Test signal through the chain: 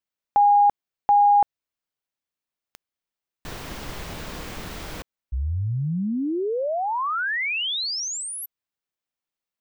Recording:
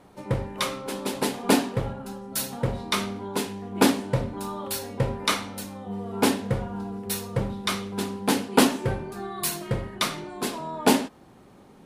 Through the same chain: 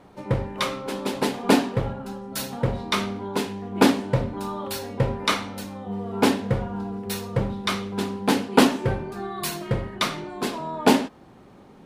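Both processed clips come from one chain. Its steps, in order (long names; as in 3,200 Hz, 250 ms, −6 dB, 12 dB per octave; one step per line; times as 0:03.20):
parametric band 11,000 Hz −8 dB 1.4 octaves
level +2.5 dB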